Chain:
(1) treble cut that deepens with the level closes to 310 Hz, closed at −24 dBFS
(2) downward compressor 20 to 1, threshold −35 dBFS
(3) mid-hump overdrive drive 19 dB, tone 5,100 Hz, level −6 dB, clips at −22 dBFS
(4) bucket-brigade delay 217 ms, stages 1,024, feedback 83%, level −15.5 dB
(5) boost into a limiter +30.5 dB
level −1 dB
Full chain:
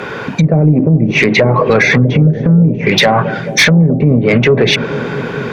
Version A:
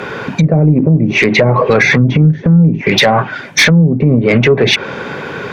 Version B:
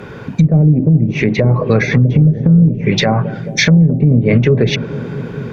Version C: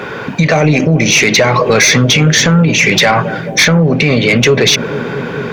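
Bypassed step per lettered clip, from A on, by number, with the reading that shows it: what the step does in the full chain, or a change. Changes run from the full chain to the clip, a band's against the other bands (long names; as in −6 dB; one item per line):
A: 4, change in momentary loudness spread +1 LU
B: 3, 125 Hz band +7.0 dB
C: 1, 4 kHz band +5.0 dB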